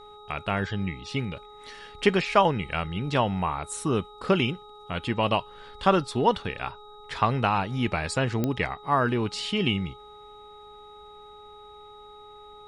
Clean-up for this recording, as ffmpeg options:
-af "adeclick=t=4,bandreject=f=418.4:t=h:w=4,bandreject=f=836.8:t=h:w=4,bandreject=f=1255.2:t=h:w=4,bandreject=f=3800:w=30"

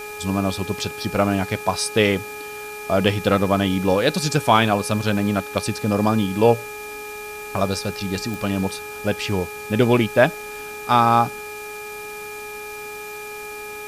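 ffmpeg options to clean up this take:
-af "adeclick=t=4,bandreject=f=419.4:t=h:w=4,bandreject=f=838.8:t=h:w=4,bandreject=f=1258.2:t=h:w=4,bandreject=f=1677.6:t=h:w=4,bandreject=f=2400:w=30,afwtdn=0.0089"

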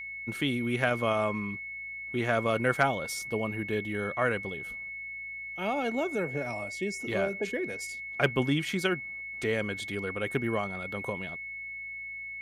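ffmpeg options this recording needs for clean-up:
-af "bandreject=f=56.5:t=h:w=4,bandreject=f=113:t=h:w=4,bandreject=f=169.5:t=h:w=4,bandreject=f=226:t=h:w=4,bandreject=f=2200:w=30"

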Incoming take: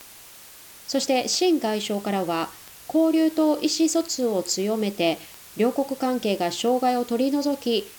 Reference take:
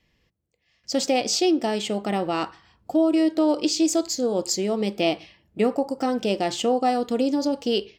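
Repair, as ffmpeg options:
-af "adeclick=t=4,afftdn=nr=20:nf=-46"

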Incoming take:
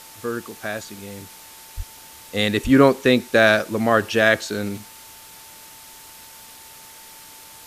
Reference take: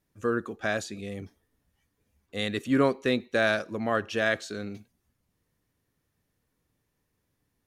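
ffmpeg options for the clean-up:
-filter_complex "[0:a]bandreject=f=890:w=30,asplit=3[s0][s1][s2];[s0]afade=t=out:st=1.76:d=0.02[s3];[s1]highpass=f=140:w=0.5412,highpass=f=140:w=1.3066,afade=t=in:st=1.76:d=0.02,afade=t=out:st=1.88:d=0.02[s4];[s2]afade=t=in:st=1.88:d=0.02[s5];[s3][s4][s5]amix=inputs=3:normalize=0,asplit=3[s6][s7][s8];[s6]afade=t=out:st=2.63:d=0.02[s9];[s7]highpass=f=140:w=0.5412,highpass=f=140:w=1.3066,afade=t=in:st=2.63:d=0.02,afade=t=out:st=2.75:d=0.02[s10];[s8]afade=t=in:st=2.75:d=0.02[s11];[s9][s10][s11]amix=inputs=3:normalize=0,afwtdn=0.0079,asetnsamples=n=441:p=0,asendcmd='1.77 volume volume -9.5dB',volume=1"

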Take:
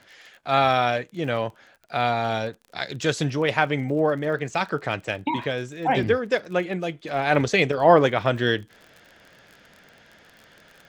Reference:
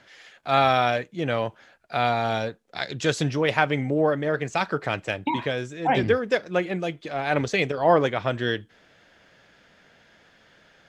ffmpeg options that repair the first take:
-af "adeclick=t=4,asetnsamples=n=441:p=0,asendcmd='7.08 volume volume -3.5dB',volume=1"

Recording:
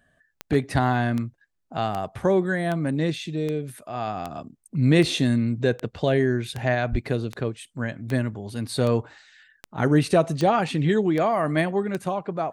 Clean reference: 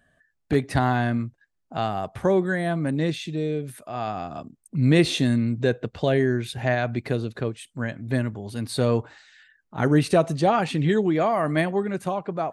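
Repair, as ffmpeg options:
-filter_complex "[0:a]adeclick=t=4,asplit=3[s0][s1][s2];[s0]afade=t=out:st=6.91:d=0.02[s3];[s1]highpass=f=140:w=0.5412,highpass=f=140:w=1.3066,afade=t=in:st=6.91:d=0.02,afade=t=out:st=7.03:d=0.02[s4];[s2]afade=t=in:st=7.03:d=0.02[s5];[s3][s4][s5]amix=inputs=3:normalize=0"

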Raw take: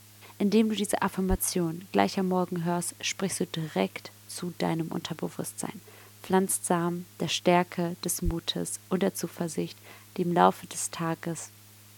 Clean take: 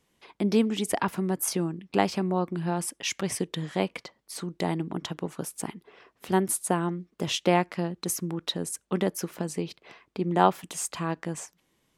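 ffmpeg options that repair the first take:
-filter_complex "[0:a]bandreject=f=104:t=h:w=4,bandreject=f=208:t=h:w=4,bandreject=f=312:t=h:w=4,bandreject=f=416:t=h:w=4,asplit=3[s0][s1][s2];[s0]afade=t=out:st=1.29:d=0.02[s3];[s1]highpass=f=140:w=0.5412,highpass=f=140:w=1.3066,afade=t=in:st=1.29:d=0.02,afade=t=out:st=1.41:d=0.02[s4];[s2]afade=t=in:st=1.41:d=0.02[s5];[s3][s4][s5]amix=inputs=3:normalize=0,asplit=3[s6][s7][s8];[s6]afade=t=out:st=8.24:d=0.02[s9];[s7]highpass=f=140:w=0.5412,highpass=f=140:w=1.3066,afade=t=in:st=8.24:d=0.02,afade=t=out:st=8.36:d=0.02[s10];[s8]afade=t=in:st=8.36:d=0.02[s11];[s9][s10][s11]amix=inputs=3:normalize=0,afftdn=nr=17:nf=-53"

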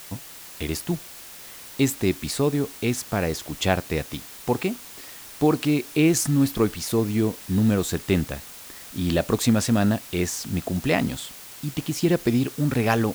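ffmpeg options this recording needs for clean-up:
-af "afwtdn=0.0079"

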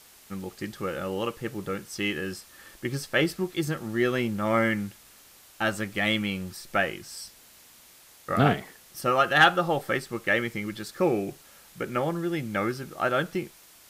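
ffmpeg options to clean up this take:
-af "afwtdn=0.0025"

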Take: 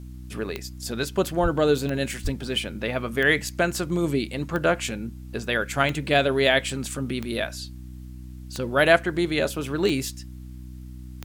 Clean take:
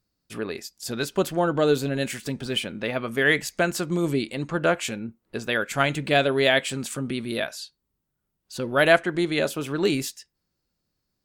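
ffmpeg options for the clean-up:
-filter_complex "[0:a]adeclick=t=4,bandreject=f=62.5:t=h:w=4,bandreject=f=125:t=h:w=4,bandreject=f=187.5:t=h:w=4,bandreject=f=250:t=h:w=4,bandreject=f=312.5:t=h:w=4,asplit=3[s0][s1][s2];[s0]afade=t=out:st=1.42:d=0.02[s3];[s1]highpass=f=140:w=0.5412,highpass=f=140:w=1.3066,afade=t=in:st=1.42:d=0.02,afade=t=out:st=1.54:d=0.02[s4];[s2]afade=t=in:st=1.54:d=0.02[s5];[s3][s4][s5]amix=inputs=3:normalize=0,asplit=3[s6][s7][s8];[s6]afade=t=out:st=2.23:d=0.02[s9];[s7]highpass=f=140:w=0.5412,highpass=f=140:w=1.3066,afade=t=in:st=2.23:d=0.02,afade=t=out:st=2.35:d=0.02[s10];[s8]afade=t=in:st=2.35:d=0.02[s11];[s9][s10][s11]amix=inputs=3:normalize=0,agate=range=0.0891:threshold=0.0251"

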